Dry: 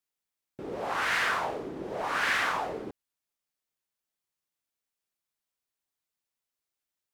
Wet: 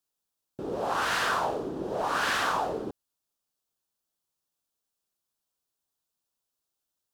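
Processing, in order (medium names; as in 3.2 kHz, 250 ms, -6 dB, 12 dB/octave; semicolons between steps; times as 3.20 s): peaking EQ 2.1 kHz -12 dB 0.6 oct; trim +4 dB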